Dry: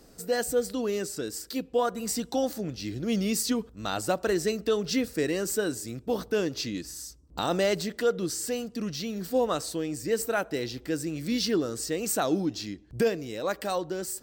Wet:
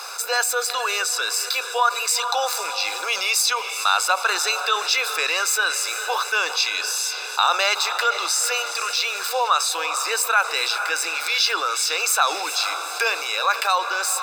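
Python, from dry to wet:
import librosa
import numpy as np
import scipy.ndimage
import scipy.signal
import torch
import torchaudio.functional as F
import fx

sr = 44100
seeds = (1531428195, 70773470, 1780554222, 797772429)

y = scipy.signal.sosfilt(scipy.signal.ellip(4, 1.0, 60, 610.0, 'highpass', fs=sr, output='sos'), x)
y = fx.high_shelf(y, sr, hz=7400.0, db=-11.0)
y = y + 0.86 * np.pad(y, (int(0.8 * sr / 1000.0), 0))[:len(y)]
y = fx.echo_diffused(y, sr, ms=453, feedback_pct=48, wet_db=-15)
y = fx.env_flatten(y, sr, amount_pct=50)
y = y * 10.0 ** (9.0 / 20.0)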